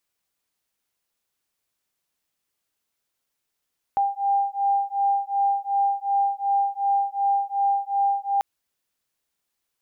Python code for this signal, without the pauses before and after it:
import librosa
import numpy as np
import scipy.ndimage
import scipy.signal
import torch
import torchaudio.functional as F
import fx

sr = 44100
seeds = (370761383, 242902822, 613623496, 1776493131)

y = fx.two_tone_beats(sr, length_s=4.44, hz=796.0, beat_hz=2.7, level_db=-23.0)